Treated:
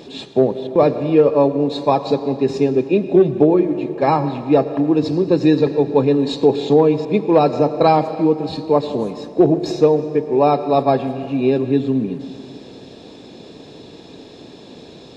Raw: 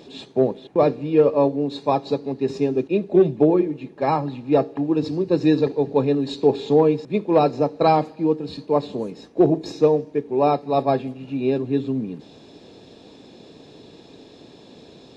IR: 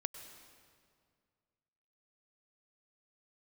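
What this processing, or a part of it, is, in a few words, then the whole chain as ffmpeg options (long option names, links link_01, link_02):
compressed reverb return: -filter_complex "[0:a]asplit=2[link_01][link_02];[1:a]atrim=start_sample=2205[link_03];[link_02][link_03]afir=irnorm=-1:irlink=0,acompressor=threshold=-19dB:ratio=6,volume=3.5dB[link_04];[link_01][link_04]amix=inputs=2:normalize=0,volume=-1dB"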